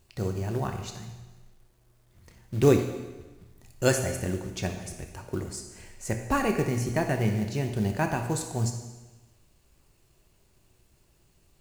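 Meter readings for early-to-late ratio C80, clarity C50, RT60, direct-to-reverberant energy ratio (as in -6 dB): 9.0 dB, 6.5 dB, 1.2 s, 5.0 dB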